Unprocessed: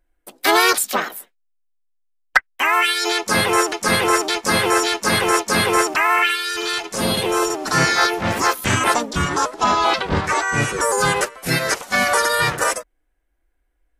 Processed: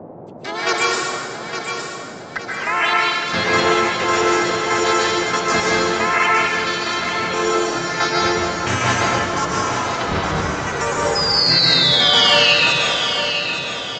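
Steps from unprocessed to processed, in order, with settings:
downsampling to 16,000 Hz
square-wave tremolo 1.5 Hz, depth 65%, duty 40%
sound drawn into the spectrogram fall, 0:11.15–0:12.54, 2,500–5,100 Hz −17 dBFS
on a send: repeating echo 863 ms, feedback 42%, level −7.5 dB
on the sum: dense smooth reverb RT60 1.9 s, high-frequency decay 0.85×, pre-delay 115 ms, DRR −4.5 dB
noise in a band 110–730 Hz −33 dBFS
level −3.5 dB

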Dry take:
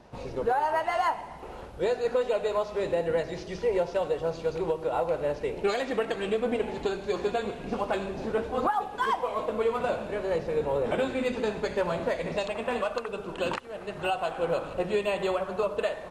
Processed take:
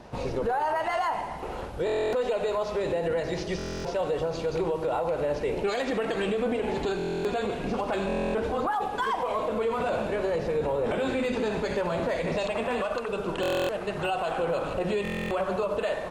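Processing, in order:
brickwall limiter −26.5 dBFS, peak gain reduction 10 dB
on a send at −17.5 dB: convolution reverb RT60 0.45 s, pre-delay 40 ms
on the sum: buffer that repeats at 0:01.85/0:03.57/0:06.97/0:08.07/0:13.41/0:15.03, samples 1,024, times 11
level +6.5 dB

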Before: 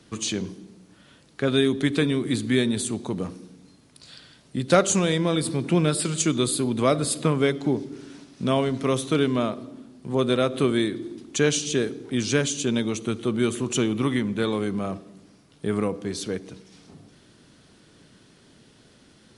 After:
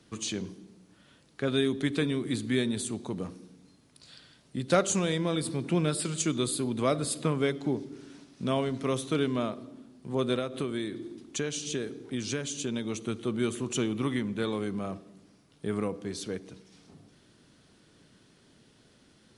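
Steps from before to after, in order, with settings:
0:10.38–0:12.90: downward compressor, threshold −22 dBFS, peak gain reduction 7.5 dB
level −6 dB

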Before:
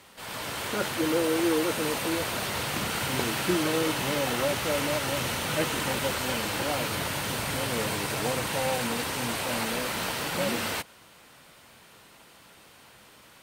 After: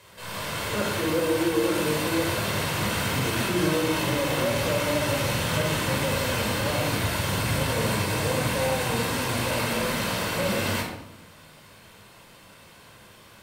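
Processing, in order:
brickwall limiter −19 dBFS, peak gain reduction 5.5 dB
rectangular room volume 2,200 cubic metres, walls furnished, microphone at 5.2 metres
level −2 dB

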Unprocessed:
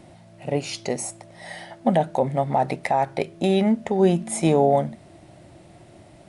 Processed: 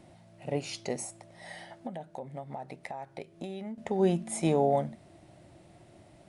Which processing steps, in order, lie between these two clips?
0:01.03–0:03.78: downward compressor 6 to 1, threshold −30 dBFS, peak gain reduction 15 dB
level −7.5 dB

